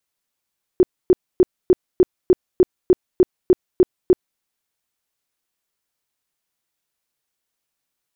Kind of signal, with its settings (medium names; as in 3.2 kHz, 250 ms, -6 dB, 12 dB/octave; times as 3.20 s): tone bursts 366 Hz, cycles 11, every 0.30 s, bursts 12, -7.5 dBFS